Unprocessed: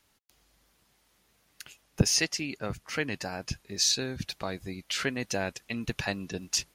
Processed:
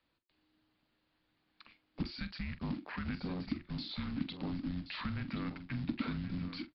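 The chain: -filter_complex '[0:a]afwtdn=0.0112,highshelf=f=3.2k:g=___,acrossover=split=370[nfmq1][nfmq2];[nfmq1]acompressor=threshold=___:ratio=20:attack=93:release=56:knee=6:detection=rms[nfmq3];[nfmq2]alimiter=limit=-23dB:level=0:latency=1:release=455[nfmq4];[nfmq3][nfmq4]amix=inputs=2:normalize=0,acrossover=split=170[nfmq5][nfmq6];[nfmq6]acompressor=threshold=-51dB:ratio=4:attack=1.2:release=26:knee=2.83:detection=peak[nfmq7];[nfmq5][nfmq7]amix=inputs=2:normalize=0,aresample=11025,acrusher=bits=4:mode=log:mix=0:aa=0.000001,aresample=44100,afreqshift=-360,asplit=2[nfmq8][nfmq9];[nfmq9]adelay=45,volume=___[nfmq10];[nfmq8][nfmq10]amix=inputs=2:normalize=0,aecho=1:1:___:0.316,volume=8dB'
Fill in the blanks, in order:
-2, -44dB, -13dB, 1076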